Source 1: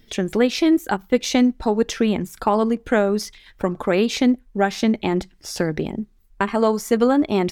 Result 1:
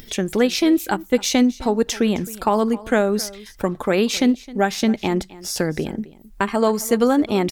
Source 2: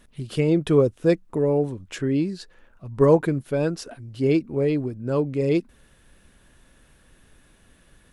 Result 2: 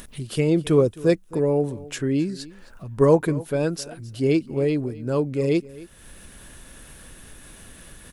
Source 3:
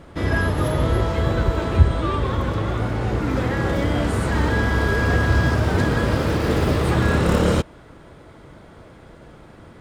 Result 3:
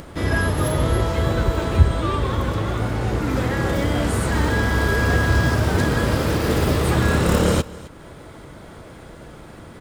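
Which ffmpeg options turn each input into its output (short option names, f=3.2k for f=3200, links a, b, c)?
-filter_complex "[0:a]highshelf=f=6.6k:g=10,acompressor=mode=upward:threshold=-33dB:ratio=2.5,asplit=2[a][b];[b]aecho=0:1:264:0.106[c];[a][c]amix=inputs=2:normalize=0"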